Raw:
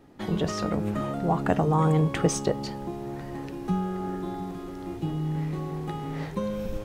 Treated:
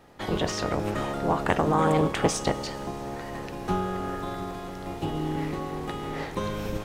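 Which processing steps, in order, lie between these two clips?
spectral peaks clipped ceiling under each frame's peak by 14 dB; Schroeder reverb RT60 3.9 s, combs from 33 ms, DRR 15.5 dB; loudspeaker Doppler distortion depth 0.16 ms

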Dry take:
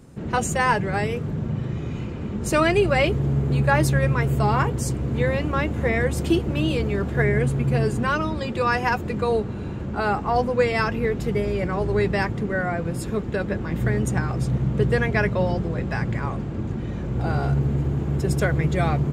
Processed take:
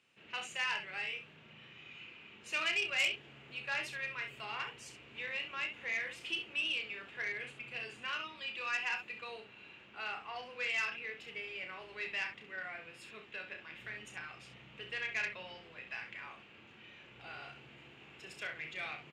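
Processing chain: band-pass filter 2.7 kHz, Q 4.7; early reflections 32 ms -6.5 dB, 66 ms -9 dB; transformer saturation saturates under 3.6 kHz

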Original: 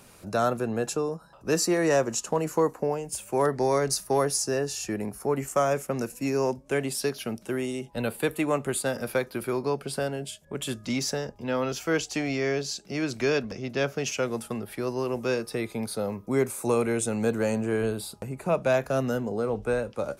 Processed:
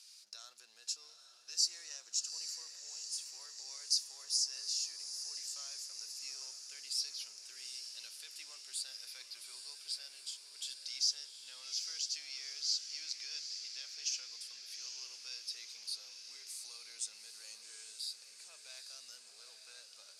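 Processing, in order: companding laws mixed up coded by mu; tilt EQ -1.5 dB/octave; peak limiter -17 dBFS, peak gain reduction 6 dB; ladder band-pass 5.4 kHz, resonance 60%; echo that smears into a reverb 826 ms, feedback 64%, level -8 dB; trim +7 dB

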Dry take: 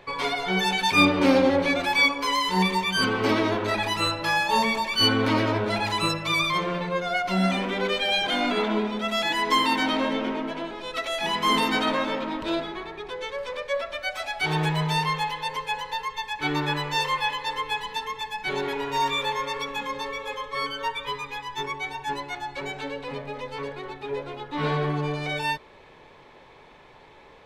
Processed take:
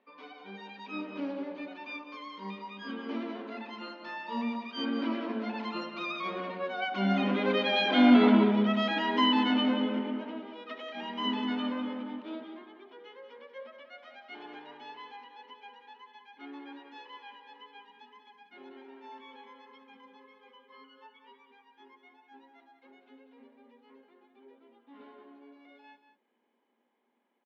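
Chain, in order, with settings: Doppler pass-by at 8.08 s, 16 m/s, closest 12 m; brick-wall FIR high-pass 190 Hz; distance through air 250 m; small resonant body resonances 240/3000 Hz, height 13 dB, ringing for 70 ms; resampled via 16 kHz; delay 188 ms -10 dB

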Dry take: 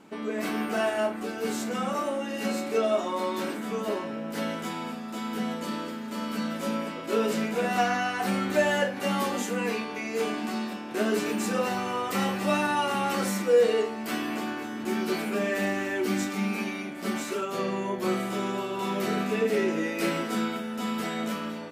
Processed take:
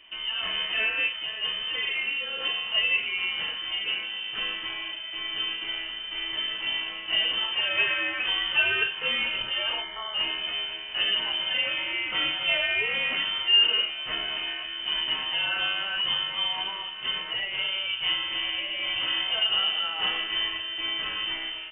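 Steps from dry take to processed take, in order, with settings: spectral selection erased 9.82–10.14 s, 410–900 Hz; frequency inversion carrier 3.3 kHz

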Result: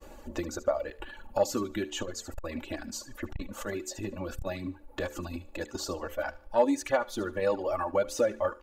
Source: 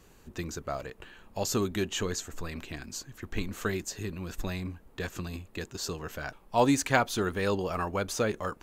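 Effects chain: compression 3:1, threshold -40 dBFS, peak gain reduction 16 dB; bass shelf 100 Hz +7 dB; expander -53 dBFS; peaking EQ 590 Hz +13.5 dB 1.7 oct; comb 3.5 ms, depth 81%; thinning echo 74 ms, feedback 41%, high-pass 960 Hz, level -7 dB; reverb removal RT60 1.3 s; de-hum 74.09 Hz, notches 7; transformer saturation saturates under 290 Hz; trim +1.5 dB

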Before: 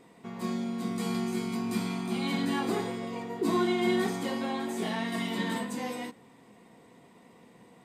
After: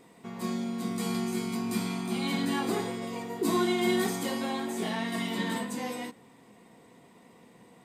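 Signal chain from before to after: treble shelf 6.2 kHz +6 dB, from 3.02 s +11.5 dB, from 4.60 s +3.5 dB

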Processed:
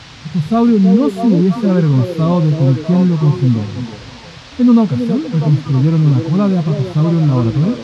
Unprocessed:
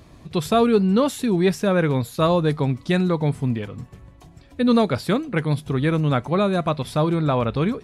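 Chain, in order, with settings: tone controls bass +7 dB, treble -1 dB; harmonic-percussive split percussive -18 dB; graphic EQ 125/250/1000 Hz +7/+8/+8 dB; in parallel at -2 dB: peak limiter -9.5 dBFS, peak gain reduction 11 dB; on the sum: band noise 430–5100 Hz -33 dBFS; on a send: repeats whose band climbs or falls 323 ms, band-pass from 410 Hz, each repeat 0.7 oct, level -1.5 dB; on the sum: trim -6 dB

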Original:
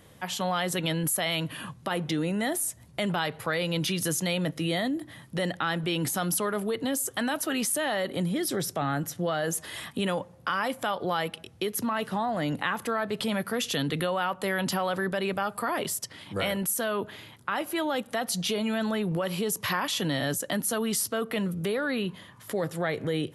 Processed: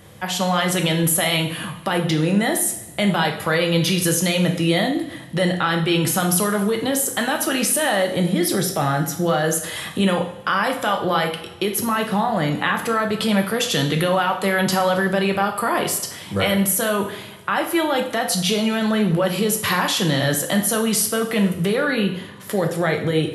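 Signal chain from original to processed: two-slope reverb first 0.59 s, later 2.1 s, DRR 3 dB; trim +7 dB

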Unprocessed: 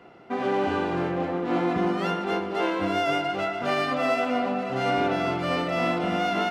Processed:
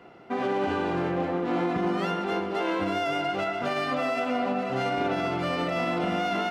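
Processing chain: peak limiter -18 dBFS, peak gain reduction 6 dB

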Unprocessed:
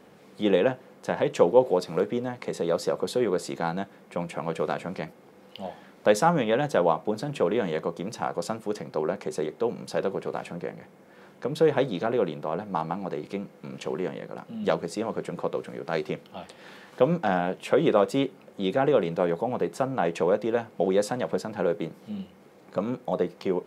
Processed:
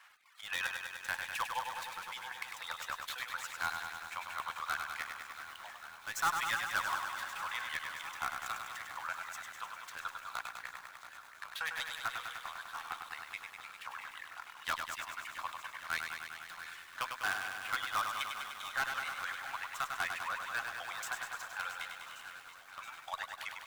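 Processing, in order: median filter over 9 samples; reverb removal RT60 0.59 s; inverse Chebyshev high-pass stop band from 460 Hz, stop band 50 dB; reverb removal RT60 1.6 s; in parallel at -5.5 dB: integer overflow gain 29.5 dB; on the sum: Chebyshev shaper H 5 -14 dB, 6 -26 dB, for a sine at -13.5 dBFS; square tremolo 3.9 Hz, depth 65%, duty 60%; shuffle delay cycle 1130 ms, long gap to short 1.5:1, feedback 55%, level -13 dB; bit-crushed delay 100 ms, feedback 80%, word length 9-bit, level -5.5 dB; trim -5 dB

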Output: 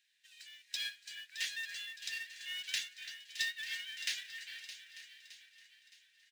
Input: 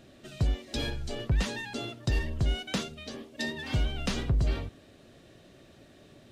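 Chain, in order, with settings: steep high-pass 1.6 kHz 96 dB/octave; on a send: echo whose repeats swap between lows and highs 308 ms, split 2.2 kHz, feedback 76%, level -5.5 dB; on the sum: short-mantissa float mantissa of 2-bit; delay 893 ms -13.5 dB; upward expansion 1.5:1, over -59 dBFS; trim +1 dB

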